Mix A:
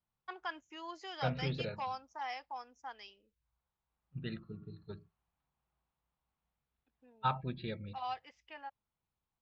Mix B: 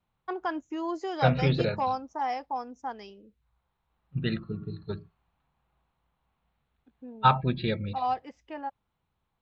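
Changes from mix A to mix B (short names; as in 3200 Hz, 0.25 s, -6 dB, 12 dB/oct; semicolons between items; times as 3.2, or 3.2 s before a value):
first voice: remove band-pass 3100 Hz, Q 0.96; second voice +12.0 dB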